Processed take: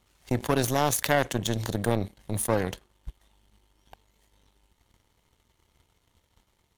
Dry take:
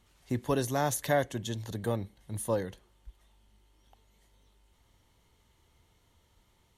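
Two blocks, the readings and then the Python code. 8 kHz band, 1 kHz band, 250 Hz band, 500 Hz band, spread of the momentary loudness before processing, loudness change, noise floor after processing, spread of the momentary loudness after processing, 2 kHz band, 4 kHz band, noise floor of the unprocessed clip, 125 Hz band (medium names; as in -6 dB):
+7.0 dB, +5.0 dB, +5.0 dB, +3.5 dB, 9 LU, +5.0 dB, -72 dBFS, 8 LU, +6.5 dB, +8.5 dB, -69 dBFS, +5.0 dB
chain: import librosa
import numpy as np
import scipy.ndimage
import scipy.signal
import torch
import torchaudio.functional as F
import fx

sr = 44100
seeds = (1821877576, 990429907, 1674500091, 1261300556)

y = fx.power_curve(x, sr, exponent=2.0)
y = fx.env_flatten(y, sr, amount_pct=70)
y = y * 10.0 ** (8.0 / 20.0)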